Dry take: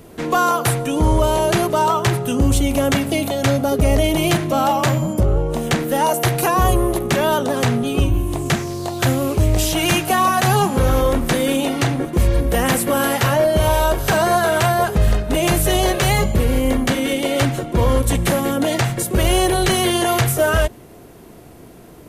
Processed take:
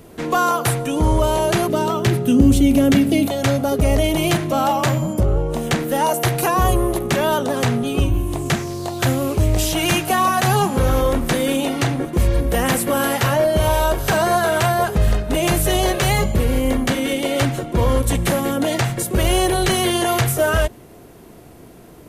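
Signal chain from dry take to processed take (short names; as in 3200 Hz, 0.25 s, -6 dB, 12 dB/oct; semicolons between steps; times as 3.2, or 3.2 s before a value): 1.68–3.27 ten-band EQ 250 Hz +9 dB, 1000 Hz -7 dB, 8000 Hz -3 dB; gain -1 dB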